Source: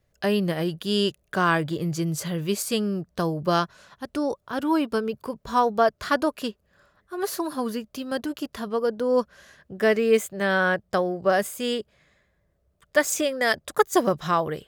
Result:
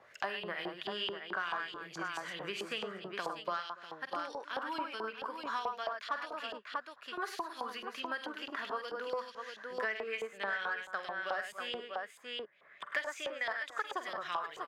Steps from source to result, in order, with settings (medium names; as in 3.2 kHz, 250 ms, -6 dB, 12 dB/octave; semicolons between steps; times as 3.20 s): bass shelf 110 Hz -11.5 dB; on a send: multi-tap echo 46/74/101/289/642 ms -10/-18/-6.5/-19/-10 dB; on the sum: short-mantissa float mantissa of 6-bit; LFO band-pass saw up 4.6 Hz 860–3500 Hz; in parallel at -4.5 dB: saturation -21 dBFS, distortion -16 dB; on the sum: three bands compressed up and down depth 100%; trim -9 dB